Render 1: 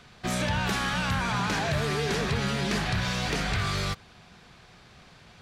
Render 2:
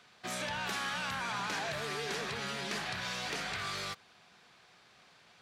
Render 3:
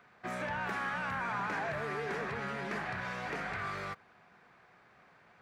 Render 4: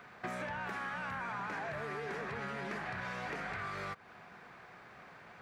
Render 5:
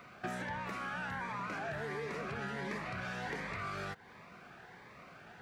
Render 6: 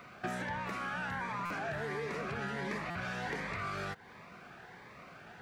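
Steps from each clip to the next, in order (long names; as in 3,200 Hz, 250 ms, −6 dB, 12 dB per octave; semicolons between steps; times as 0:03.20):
high-pass filter 530 Hz 6 dB per octave; level −6 dB
flat-topped bell 6,400 Hz −16 dB 2.6 octaves; level +2 dB
downward compressor 5 to 1, threshold −46 dBFS, peak gain reduction 12.5 dB; level +7.5 dB
phaser whose notches keep moving one way rising 1.4 Hz; level +2.5 dB
buffer that repeats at 0:01.45/0:02.90, samples 256; level +2 dB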